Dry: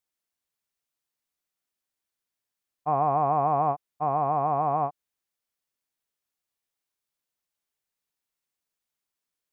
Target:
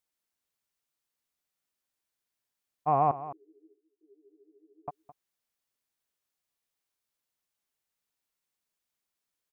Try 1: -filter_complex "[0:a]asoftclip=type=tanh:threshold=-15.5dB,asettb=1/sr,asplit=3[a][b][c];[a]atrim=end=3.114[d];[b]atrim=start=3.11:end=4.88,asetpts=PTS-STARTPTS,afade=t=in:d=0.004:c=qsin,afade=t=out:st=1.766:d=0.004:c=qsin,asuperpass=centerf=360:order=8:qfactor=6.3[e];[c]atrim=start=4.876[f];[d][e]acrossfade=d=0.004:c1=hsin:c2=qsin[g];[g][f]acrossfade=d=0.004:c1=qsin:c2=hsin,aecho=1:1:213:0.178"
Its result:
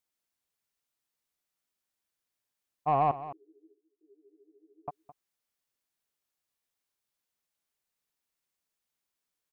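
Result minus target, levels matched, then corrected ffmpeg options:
soft clip: distortion +16 dB
-filter_complex "[0:a]asoftclip=type=tanh:threshold=-6.5dB,asettb=1/sr,asplit=3[a][b][c];[a]atrim=end=3.114[d];[b]atrim=start=3.11:end=4.88,asetpts=PTS-STARTPTS,afade=t=in:d=0.004:c=qsin,afade=t=out:st=1.766:d=0.004:c=qsin,asuperpass=centerf=360:order=8:qfactor=6.3[e];[c]atrim=start=4.876[f];[d][e]acrossfade=d=0.004:c1=hsin:c2=qsin[g];[g][f]acrossfade=d=0.004:c1=qsin:c2=hsin,aecho=1:1:213:0.178"

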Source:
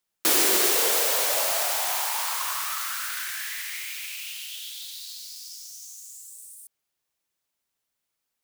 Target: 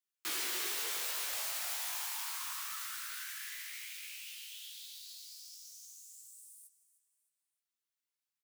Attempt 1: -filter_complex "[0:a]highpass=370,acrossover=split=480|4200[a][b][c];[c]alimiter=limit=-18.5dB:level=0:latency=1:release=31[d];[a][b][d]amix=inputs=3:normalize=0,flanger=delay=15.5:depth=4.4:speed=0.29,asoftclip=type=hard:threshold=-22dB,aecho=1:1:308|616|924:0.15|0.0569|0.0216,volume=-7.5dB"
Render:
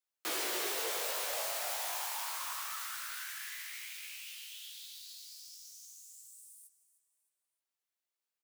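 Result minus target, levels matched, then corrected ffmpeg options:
500 Hz band +10.5 dB
-filter_complex "[0:a]highpass=370,equalizer=f=570:t=o:w=1.3:g=-14,acrossover=split=480|4200[a][b][c];[c]alimiter=limit=-18.5dB:level=0:latency=1:release=31[d];[a][b][d]amix=inputs=3:normalize=0,flanger=delay=15.5:depth=4.4:speed=0.29,asoftclip=type=hard:threshold=-22dB,aecho=1:1:308|616|924:0.15|0.0569|0.0216,volume=-7.5dB"

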